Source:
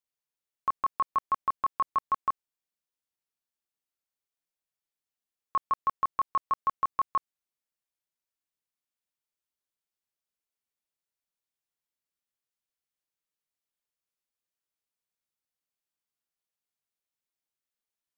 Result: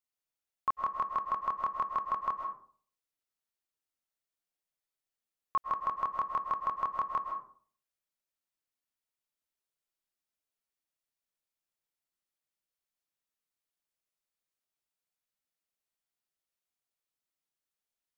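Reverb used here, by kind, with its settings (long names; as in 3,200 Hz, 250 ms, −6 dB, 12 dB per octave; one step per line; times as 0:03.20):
comb and all-pass reverb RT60 0.51 s, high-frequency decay 0.45×, pre-delay 90 ms, DRR 3.5 dB
level −2.5 dB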